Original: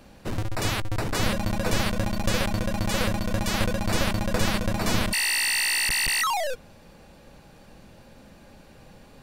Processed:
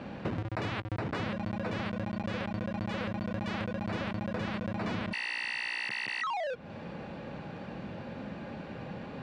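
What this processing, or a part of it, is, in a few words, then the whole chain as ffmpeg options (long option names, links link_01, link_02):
AM radio: -filter_complex "[0:a]highpass=130,lowpass=3200,acompressor=threshold=-41dB:ratio=10,asoftclip=type=tanh:threshold=-31.5dB,asettb=1/sr,asplit=3[link_01][link_02][link_03];[link_01]atrim=end=5.714[link_04];[link_02]atrim=start=5.71:end=6.11,asetpts=PTS-STARTPTS,afade=type=in:duration=0.004:curve=qsin,afade=type=out:start_time=0.396:duration=0.004:curve=qsin,highpass=200[link_05];[link_03]atrim=start=6.106[link_06];[link_04][link_05]acrossfade=duration=0.004:curve1=hsin:curve2=qsin[link_07];[link_07][link_06]acrossfade=duration=0.004:curve1=qsin:curve2=hsin,bass=frequency=250:gain=4,treble=frequency=4000:gain=-6,volume=9dB"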